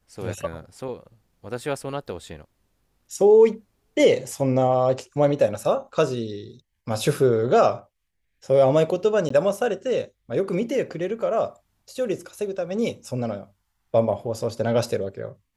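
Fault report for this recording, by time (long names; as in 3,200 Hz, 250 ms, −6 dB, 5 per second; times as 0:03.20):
0:09.29–0:09.30: drop-out 14 ms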